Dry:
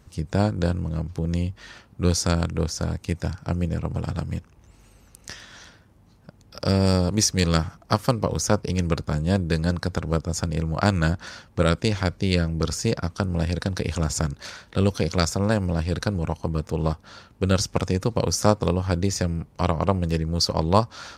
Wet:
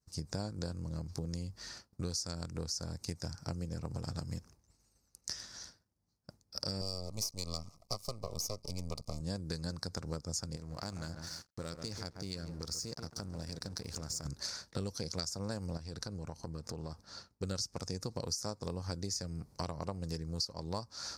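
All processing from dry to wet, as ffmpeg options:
-filter_complex "[0:a]asettb=1/sr,asplit=3[a][b][c];[a]atrim=end=6.814[d];[b]atrim=start=6.81:end=9.21,asetpts=PTS-STARTPTS,afade=t=in:d=0.004:c=qsin,afade=t=out:st=2.396:d=0.004:c=qsin,aecho=1:1:1.7:0.69,atrim=end_sample=105840,aeval=exprs='max(val(0),0)':c=same,asuperstop=centerf=1600:order=12:qfactor=2.1[e];[c]atrim=start=9.206[f];[d][e]acrossfade=d=0.004:c1=hsin:c2=qsin[g];[g][f]acrossfade=d=0.004:c1=qsin:c2=hsin,asettb=1/sr,asplit=3[h][i][j];[h]atrim=end=10.564[k];[i]atrim=start=10.56:end=14.26,asetpts=PTS-STARTPTS,afade=t=in:d=0.004:c=qsin,afade=t=out:st=3.696:d=0.004:c=qsin,asplit=2[l][m];[m]adelay=138,lowpass=f=1.3k:p=1,volume=-11.5dB,asplit=2[n][o];[o]adelay=138,lowpass=f=1.3k:p=1,volume=0.25,asplit=2[p][q];[q]adelay=138,lowpass=f=1.3k:p=1,volume=0.25[r];[l][n][p][r]amix=inputs=4:normalize=0,atrim=end_sample=163170,acompressor=threshold=-35dB:ratio=2.5:attack=3.2:release=140:knee=1:detection=peak,aeval=exprs='sgn(val(0))*max(abs(val(0))-0.00447,0)':c=same[s];[j]atrim=start=14.256[t];[k][s]acrossfade=d=0.004:c1=hsin:c2=qsin[u];[u][t]acrossfade=d=0.004:c1=qsin:c2=hsin,asettb=1/sr,asplit=3[v][w][x];[v]atrim=end=15.774[y];[w]atrim=start=15.77:end=17.43,asetpts=PTS-STARTPTS,afade=t=in:d=0.004:c=qsin,afade=t=out:st=1.656:d=0.004:c=qsin,highshelf=f=6.5k:g=-5.5,acompressor=threshold=-32dB:ratio=4:attack=3.2:release=140:knee=1:detection=peak[z];[x]atrim=start=17.426[aa];[y][z]acrossfade=d=0.004:c1=hsin:c2=qsin[ab];[ab][aa]acrossfade=d=0.004:c1=qsin:c2=hsin,agate=range=-33dB:threshold=-41dB:ratio=3:detection=peak,highshelf=f=3.9k:t=q:w=3:g=7.5,acompressor=threshold=-29dB:ratio=6,volume=-6.5dB"

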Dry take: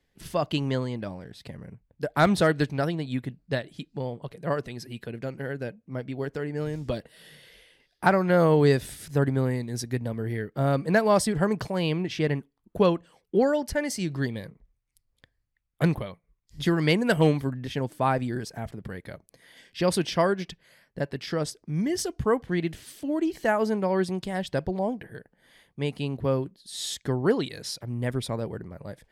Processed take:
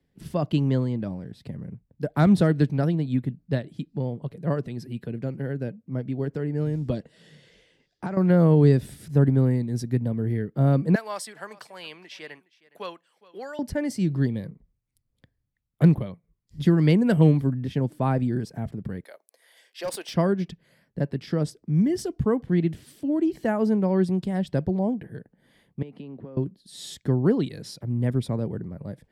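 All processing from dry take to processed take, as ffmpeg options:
-filter_complex "[0:a]asettb=1/sr,asplit=3[a][b][c];[a]atrim=end=6.954[d];[b]atrim=start=6.95:end=8.17,asetpts=PTS-STARTPTS,afade=t=in:d=0.004:c=qsin,afade=t=out:st=1.216:d=0.004:c=qsin,bass=f=250:g=-2,treble=f=4k:g=-4,acompressor=threshold=-27dB:ratio=10:attack=3.2:release=140:knee=1:detection=peak,lowpass=f=6.9k:t=q:w=4.1[e];[c]atrim=start=8.166[f];[d][e]acrossfade=d=0.004:c1=hsin:c2=qsin[g];[g][f]acrossfade=d=0.004:c1=qsin:c2=hsin,asettb=1/sr,asplit=3[h][i][j];[h]atrim=end=10.954[k];[i]atrim=start=10.95:end=13.59,asetpts=PTS-STARTPTS,afade=t=in:d=0.004:c=qsin,afade=t=out:st=2.636:d=0.004:c=qsin,highpass=1.2k,aecho=1:1:414:0.0944,atrim=end_sample=116424[l];[j]atrim=start=13.586[m];[k][l]acrossfade=d=0.004:c1=hsin:c2=qsin[n];[n][m]acrossfade=d=0.004:c1=qsin:c2=hsin,asettb=1/sr,asplit=3[o][p][q];[o]atrim=end=19.044[r];[p]atrim=start=19.04:end=20.14,asetpts=PTS-STARTPTS,afade=t=in:d=0.004:c=qsin,afade=t=out:st=1.096:d=0.004:c=qsin,highpass=f=540:w=0.5412,highpass=f=540:w=1.3066,highshelf=f=7k:g=9,asoftclip=type=hard:threshold=-23.5dB[s];[q]atrim=start=20.136[t];[r][s]acrossfade=d=0.004:c1=hsin:c2=qsin[u];[u][t]acrossfade=d=0.004:c1=qsin:c2=hsin,asettb=1/sr,asplit=3[v][w][x];[v]atrim=end=25.824[y];[w]atrim=start=25.82:end=26.37,asetpts=PTS-STARTPTS,afade=t=in:d=0.004:c=qsin,afade=t=out:st=0.546:d=0.004:c=qsin,acrossover=split=200 3400:gain=0.141 1 0.158[z][aa][ab];[z][aa][ab]amix=inputs=3:normalize=0,acompressor=threshold=-38dB:ratio=12:attack=3.2:release=140:knee=1:detection=peak[ac];[x]atrim=start=26.366[ad];[y][ac]acrossfade=d=0.004:c1=hsin:c2=qsin[ae];[ae][ad]acrossfade=d=0.004:c1=qsin:c2=hsin,equalizer=f=170:w=0.42:g=13.5,bandreject=f=6.4k:w=24,acrossover=split=290[af][ag];[ag]acompressor=threshold=-13dB:ratio=6[ah];[af][ah]amix=inputs=2:normalize=0,volume=-6.5dB"

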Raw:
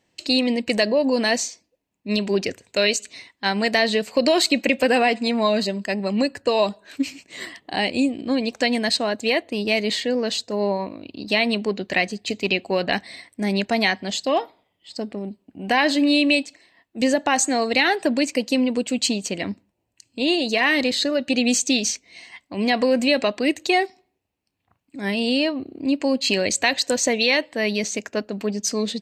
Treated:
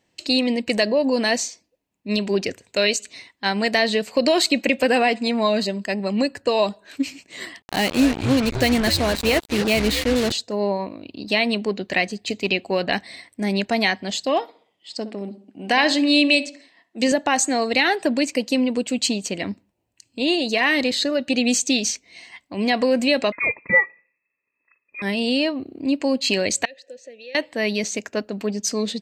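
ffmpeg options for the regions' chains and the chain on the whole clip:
-filter_complex "[0:a]asettb=1/sr,asplit=3[a][b][c];[a]atrim=end=7.624[d];[b]atrim=start=7.62:end=10.32,asetpts=PTS-STARTPTS,afade=t=in:d=0.004:c=qsin,afade=t=out:st=2.696:d=0.004:c=qsin,lowshelf=f=270:g=6.5,asplit=6[e][f][g][h][i][j];[f]adelay=248,afreqshift=-150,volume=-9dB[k];[g]adelay=496,afreqshift=-300,volume=-16.7dB[l];[h]adelay=744,afreqshift=-450,volume=-24.5dB[m];[i]adelay=992,afreqshift=-600,volume=-32.2dB[n];[j]adelay=1240,afreqshift=-750,volume=-40dB[o];[e][k][l][m][n][o]amix=inputs=6:normalize=0,atrim=end_sample=119070,acrusher=bits=3:mix=0:aa=0.5[p];[c]atrim=start=10.316[q];[d][p]acrossfade=d=0.004:c1=hsin:c2=qsin[r];[r][q]acrossfade=d=0.004:c1=qsin:c2=hsin,asettb=1/sr,asplit=3[s][t][u];[s]atrim=end=14.424[v];[t]atrim=start=14.42:end=17.12,asetpts=PTS-STARTPTS,afade=t=in:d=0.004:c=qsin,afade=t=out:st=2.696:d=0.004:c=qsin,highpass=170,lowpass=6.2k,aemphasis=mode=production:type=50kf,asplit=2[w][x];[x]adelay=65,lowpass=f=1.6k:p=1,volume=-12.5dB,asplit=2[y][z];[z]adelay=65,lowpass=f=1.6k:p=1,volume=0.45,asplit=2[aa][ab];[ab]adelay=65,lowpass=f=1.6k:p=1,volume=0.45,asplit=2[ac][ad];[ad]adelay=65,lowpass=f=1.6k:p=1,volume=0.45[ae];[w][y][aa][ac][ae]amix=inputs=5:normalize=0,atrim=end_sample=119070[af];[u]atrim=start=17.116[ag];[v][af]acrossfade=d=0.004:c1=hsin:c2=qsin[ah];[ah][ag]acrossfade=d=0.004:c1=qsin:c2=hsin,asettb=1/sr,asplit=3[ai][aj][ak];[ai]atrim=end=23.324[al];[aj]atrim=start=23.32:end=25.02,asetpts=PTS-STARTPTS,afade=t=in:d=0.004:c=qsin,afade=t=out:st=1.696:d=0.004:c=qsin,highpass=47,aecho=1:1:1.3:0.93,atrim=end_sample=74970,lowpass=f=2.3k:t=q:w=0.5098,lowpass=f=2.3k:t=q:w=0.6013,lowpass=f=2.3k:t=q:w=0.9,lowpass=f=2.3k:t=q:w=2.563,afreqshift=-2700[am];[ak]atrim=start=25.016[an];[al][am]acrossfade=d=0.004:c1=hsin:c2=qsin[ao];[ao][an]acrossfade=d=0.004:c1=qsin:c2=hsin,asettb=1/sr,asplit=3[ap][aq][ar];[ap]atrim=end=26.654[as];[aq]atrim=start=26.65:end=27.35,asetpts=PTS-STARTPTS,afade=t=in:d=0.004:c=qsin,afade=t=out:st=0.696:d=0.004:c=qsin,equalizer=f=2.5k:t=o:w=1.6:g=-6,acrossover=split=220|3000[at][au][av];[au]acompressor=threshold=-40dB:ratio=2.5:attack=3.2:release=140:knee=2.83:detection=peak[aw];[at][aw][av]amix=inputs=3:normalize=0,asplit=3[ax][ay][az];[ax]bandpass=f=530:t=q:w=8,volume=0dB[ba];[ay]bandpass=f=1.84k:t=q:w=8,volume=-6dB[bb];[az]bandpass=f=2.48k:t=q:w=8,volume=-9dB[bc];[ba][bb][bc]amix=inputs=3:normalize=0[bd];[ar]atrim=start=27.346[be];[as][bd]acrossfade=d=0.004:c1=hsin:c2=qsin[bf];[bf][be]acrossfade=d=0.004:c1=qsin:c2=hsin"

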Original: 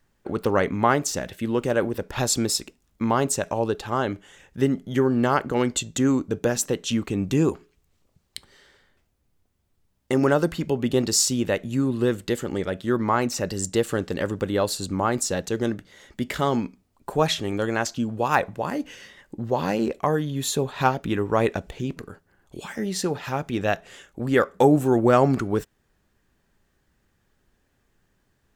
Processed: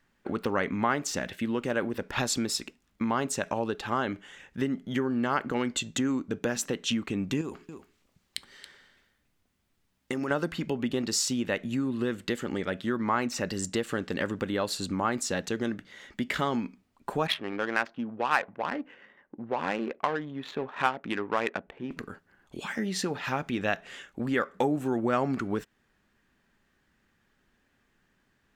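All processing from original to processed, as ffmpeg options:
-filter_complex "[0:a]asettb=1/sr,asplit=3[a][b][c];[a]atrim=end=7.414[d];[b]atrim=start=7.41:end=10.31,asetpts=PTS-STARTPTS,afade=t=in:d=0.004:c=qsin,afade=t=out:st=2.896:d=0.004:c=qsin,highshelf=f=4.3k:g=6,acompressor=threshold=-25dB:ratio=4:attack=3.2:release=140:knee=1:detection=peak,aecho=1:1:277:0.224,atrim=end_sample=127890[e];[c]atrim=start=10.306[f];[d][e]acrossfade=d=0.004:c1=hsin:c2=qsin[g];[g][f]acrossfade=d=0.004:c1=qsin:c2=hsin,asettb=1/sr,asplit=3[h][i][j];[h]atrim=end=17.274[k];[i]atrim=start=17.27:end=21.91,asetpts=PTS-STARTPTS,afade=t=in:d=0.004:c=qsin,afade=t=out:st=4.636:d=0.004:c=qsin,lowpass=3.1k,aemphasis=mode=production:type=riaa,adynamicsmooth=sensitivity=2:basefreq=820[l];[j]atrim=start=21.906[m];[k][l]acrossfade=d=0.004:c1=hsin:c2=qsin[n];[n][m]acrossfade=d=0.004:c1=qsin:c2=hsin,equalizer=f=230:w=1.3:g=7.5,acompressor=threshold=-22dB:ratio=2.5,equalizer=f=2k:w=0.43:g=10.5,volume=-7.5dB"

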